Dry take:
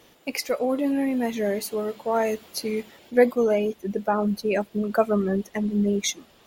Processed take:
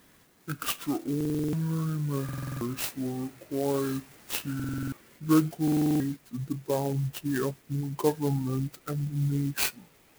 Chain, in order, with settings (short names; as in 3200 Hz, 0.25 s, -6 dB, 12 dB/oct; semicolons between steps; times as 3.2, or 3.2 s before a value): speed glide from 56% -> 71%; high shelf 4100 Hz +9.5 dB; stuck buffer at 1.16/2.24/4.55/5.63, samples 2048, times 7; clock jitter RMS 0.055 ms; gain -5.5 dB